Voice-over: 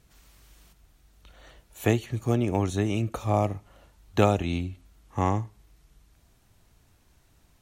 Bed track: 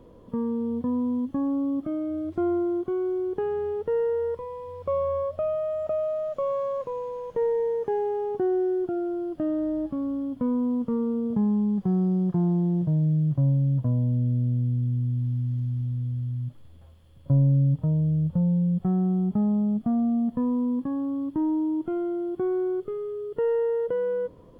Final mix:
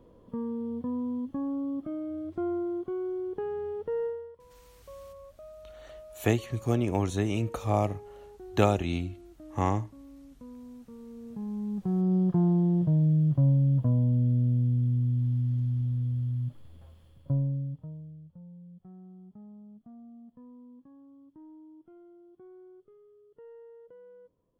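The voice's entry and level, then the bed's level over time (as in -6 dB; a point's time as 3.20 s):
4.40 s, -2.0 dB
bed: 4.06 s -6 dB
4.34 s -21 dB
10.98 s -21 dB
12.15 s -0.5 dB
17.03 s -0.5 dB
18.28 s -25.5 dB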